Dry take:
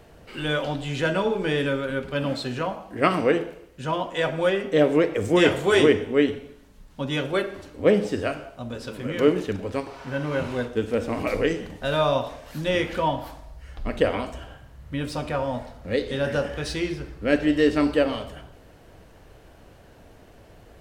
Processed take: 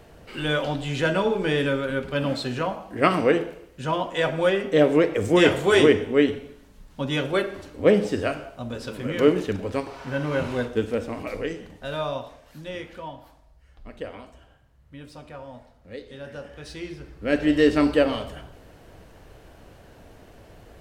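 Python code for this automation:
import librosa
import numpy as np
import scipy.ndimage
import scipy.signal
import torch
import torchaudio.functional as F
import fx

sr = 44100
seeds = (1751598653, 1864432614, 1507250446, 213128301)

y = fx.gain(x, sr, db=fx.line((10.8, 1.0), (11.24, -6.5), (12.0, -6.5), (13.1, -13.5), (16.34, -13.5), (17.04, -6.0), (17.54, 1.5)))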